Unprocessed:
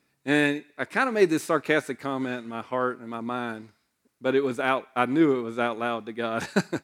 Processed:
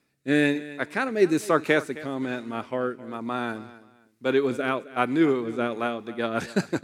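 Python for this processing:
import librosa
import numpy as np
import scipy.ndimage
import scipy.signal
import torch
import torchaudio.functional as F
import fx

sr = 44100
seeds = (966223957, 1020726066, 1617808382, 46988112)

p1 = fx.rotary_switch(x, sr, hz=1.1, then_hz=8.0, switch_at_s=5.49)
p2 = p1 + fx.echo_feedback(p1, sr, ms=264, feedback_pct=26, wet_db=-17.5, dry=0)
y = p2 * librosa.db_to_amplitude(2.5)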